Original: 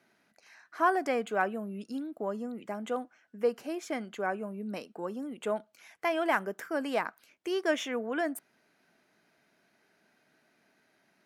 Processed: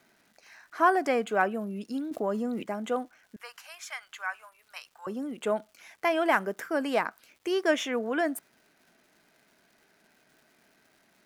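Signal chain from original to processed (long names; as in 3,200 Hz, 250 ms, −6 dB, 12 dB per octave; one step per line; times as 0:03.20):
0:03.36–0:05.07: inverse Chebyshev high-pass filter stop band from 300 Hz, stop band 60 dB
surface crackle 370 per second −57 dBFS
0:02.11–0:02.63: envelope flattener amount 50%
level +3.5 dB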